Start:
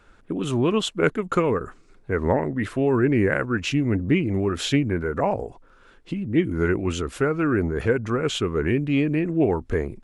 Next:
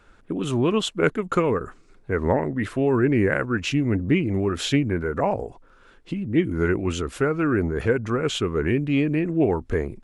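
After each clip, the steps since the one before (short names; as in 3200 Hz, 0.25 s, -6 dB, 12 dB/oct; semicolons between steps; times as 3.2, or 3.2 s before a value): nothing audible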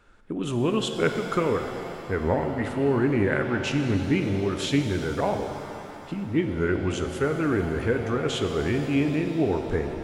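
shimmer reverb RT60 3.2 s, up +7 st, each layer -8 dB, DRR 5.5 dB; gain -3.5 dB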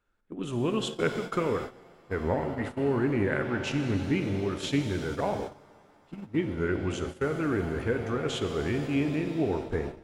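gate -29 dBFS, range -15 dB; gain -4 dB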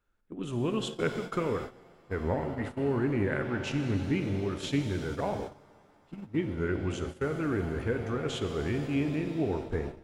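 low shelf 160 Hz +4 dB; gain -3 dB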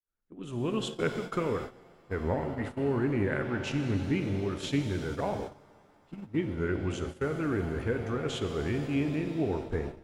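opening faded in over 0.76 s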